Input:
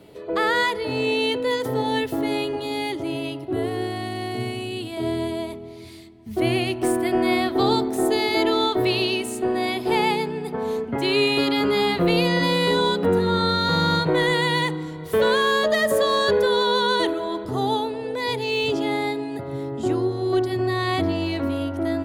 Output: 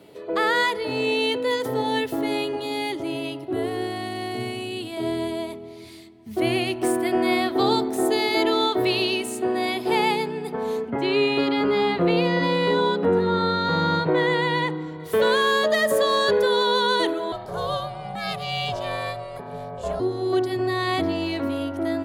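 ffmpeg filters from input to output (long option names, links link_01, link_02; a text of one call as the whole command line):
ffmpeg -i in.wav -filter_complex "[0:a]asettb=1/sr,asplit=3[link_01][link_02][link_03];[link_01]atrim=end=10.904[link_04];[link_02]atrim=start=10.9:end=15,asetpts=PTS-STARTPTS,afade=type=in:duration=0.004:curve=qsin,afade=type=out:start_time=4.096:duration=0.004:curve=qsin,aemphasis=mode=reproduction:type=75fm[link_05];[link_03]atrim=start=14.996[link_06];[link_04][link_05]acrossfade=duration=0.004:curve1=hsin:curve2=qsin[link_07];[link_07][link_06]acrossfade=duration=0.004:curve1=qsin:curve2=hsin,asettb=1/sr,asplit=3[link_08][link_09][link_10];[link_08]atrim=end=17.324[link_11];[link_09]atrim=start=17.32:end=20,asetpts=PTS-STARTPTS,afade=type=in:duration=0.004:curve=qsin,afade=type=out:start_time=2.676:duration=0.004:curve=qsin,aeval=exprs='val(0)*sin(2*PI*300*n/s)':channel_layout=same[link_12];[link_10]atrim=start=19.996[link_13];[link_11][link_12]acrossfade=duration=0.004:curve1=hsin:curve2=qsin[link_14];[link_14][link_13]acrossfade=duration=0.004:curve1=qsin:curve2=hsin,highpass=frequency=170:poles=1" out.wav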